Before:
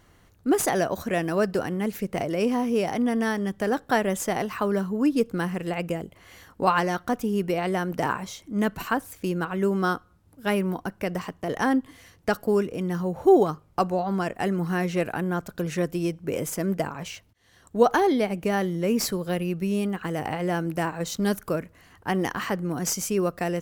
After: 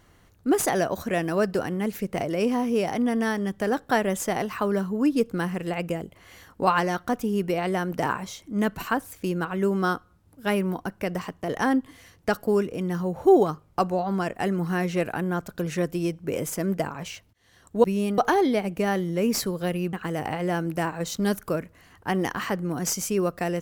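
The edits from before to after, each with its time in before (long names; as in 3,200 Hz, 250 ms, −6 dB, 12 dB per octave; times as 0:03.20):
0:19.59–0:19.93: move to 0:17.84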